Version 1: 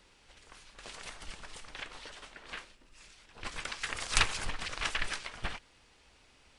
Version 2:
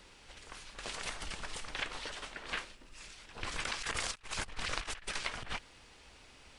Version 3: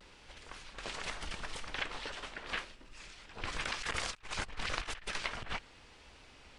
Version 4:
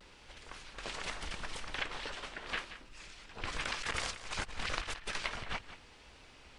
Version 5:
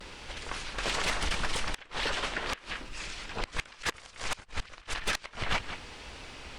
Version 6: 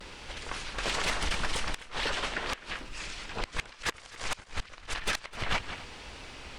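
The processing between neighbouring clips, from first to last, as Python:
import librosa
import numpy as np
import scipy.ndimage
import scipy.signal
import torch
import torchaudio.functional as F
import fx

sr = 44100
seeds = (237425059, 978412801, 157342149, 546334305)

y1 = fx.over_compress(x, sr, threshold_db=-39.0, ratio=-0.5)
y1 = y1 * librosa.db_to_amplitude(1.0)
y2 = fx.high_shelf(y1, sr, hz=8600.0, db=-12.0)
y2 = fx.vibrato(y2, sr, rate_hz=0.86, depth_cents=54.0)
y2 = y2 * librosa.db_to_amplitude(1.0)
y3 = y2 + 10.0 ** (-13.0 / 20.0) * np.pad(y2, (int(179 * sr / 1000.0), 0))[:len(y2)]
y4 = fx.gate_flip(y3, sr, shuts_db=-25.0, range_db=-26)
y4 = fx.fold_sine(y4, sr, drive_db=8, ceiling_db=-22.5)
y5 = y4 + 10.0 ** (-18.5 / 20.0) * np.pad(y4, (int(256 * sr / 1000.0), 0))[:len(y4)]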